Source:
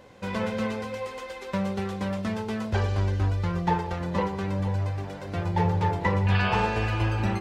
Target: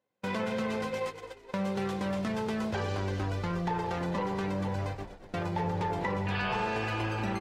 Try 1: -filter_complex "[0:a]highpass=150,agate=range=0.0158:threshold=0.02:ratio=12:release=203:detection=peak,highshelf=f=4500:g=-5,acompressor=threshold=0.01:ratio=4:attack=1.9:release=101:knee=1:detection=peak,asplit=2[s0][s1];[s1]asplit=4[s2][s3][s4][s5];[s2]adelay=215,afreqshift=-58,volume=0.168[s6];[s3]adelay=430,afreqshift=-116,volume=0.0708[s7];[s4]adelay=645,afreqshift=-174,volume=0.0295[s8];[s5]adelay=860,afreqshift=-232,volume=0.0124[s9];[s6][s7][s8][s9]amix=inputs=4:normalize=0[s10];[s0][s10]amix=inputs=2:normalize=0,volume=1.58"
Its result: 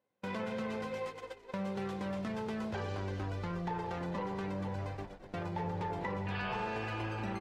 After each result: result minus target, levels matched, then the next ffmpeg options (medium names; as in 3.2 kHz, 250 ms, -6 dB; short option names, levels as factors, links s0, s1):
compression: peak gain reduction +5.5 dB; 8 kHz band -3.0 dB
-filter_complex "[0:a]highpass=150,agate=range=0.0158:threshold=0.02:ratio=12:release=203:detection=peak,highshelf=f=4500:g=-5,acompressor=threshold=0.0237:ratio=4:attack=1.9:release=101:knee=1:detection=peak,asplit=2[s0][s1];[s1]asplit=4[s2][s3][s4][s5];[s2]adelay=215,afreqshift=-58,volume=0.168[s6];[s3]adelay=430,afreqshift=-116,volume=0.0708[s7];[s4]adelay=645,afreqshift=-174,volume=0.0295[s8];[s5]adelay=860,afreqshift=-232,volume=0.0124[s9];[s6][s7][s8][s9]amix=inputs=4:normalize=0[s10];[s0][s10]amix=inputs=2:normalize=0,volume=1.58"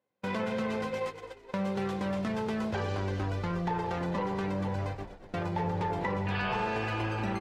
8 kHz band -3.5 dB
-filter_complex "[0:a]highpass=150,agate=range=0.0158:threshold=0.02:ratio=12:release=203:detection=peak,acompressor=threshold=0.0237:ratio=4:attack=1.9:release=101:knee=1:detection=peak,asplit=2[s0][s1];[s1]asplit=4[s2][s3][s4][s5];[s2]adelay=215,afreqshift=-58,volume=0.168[s6];[s3]adelay=430,afreqshift=-116,volume=0.0708[s7];[s4]adelay=645,afreqshift=-174,volume=0.0295[s8];[s5]adelay=860,afreqshift=-232,volume=0.0124[s9];[s6][s7][s8][s9]amix=inputs=4:normalize=0[s10];[s0][s10]amix=inputs=2:normalize=0,volume=1.58"